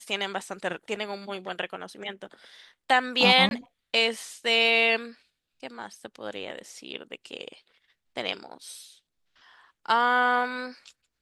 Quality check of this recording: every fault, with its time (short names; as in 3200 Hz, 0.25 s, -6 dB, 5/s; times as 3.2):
3.49–3.51 gap 21 ms